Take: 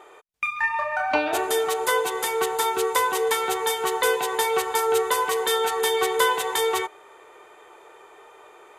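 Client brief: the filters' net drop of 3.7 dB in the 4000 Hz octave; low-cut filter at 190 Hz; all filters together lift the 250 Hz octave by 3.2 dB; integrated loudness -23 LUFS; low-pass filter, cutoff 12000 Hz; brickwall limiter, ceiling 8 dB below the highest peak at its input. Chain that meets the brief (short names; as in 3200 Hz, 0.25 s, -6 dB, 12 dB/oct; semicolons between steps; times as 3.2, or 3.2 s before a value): HPF 190 Hz; LPF 12000 Hz; bell 250 Hz +6.5 dB; bell 4000 Hz -4.5 dB; gain +1.5 dB; limiter -14 dBFS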